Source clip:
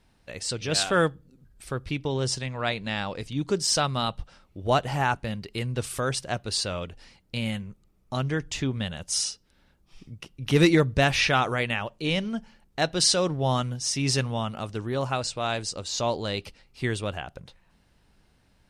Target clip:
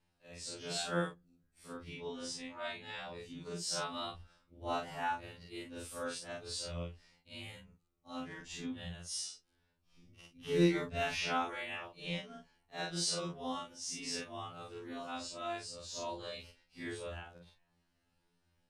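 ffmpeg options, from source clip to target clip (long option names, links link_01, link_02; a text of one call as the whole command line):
ffmpeg -i in.wav -af "afftfilt=real='re':imag='-im':win_size=4096:overlap=0.75,afftfilt=real='re*2*eq(mod(b,4),0)':imag='im*2*eq(mod(b,4),0)':win_size=2048:overlap=0.75,volume=-6.5dB" out.wav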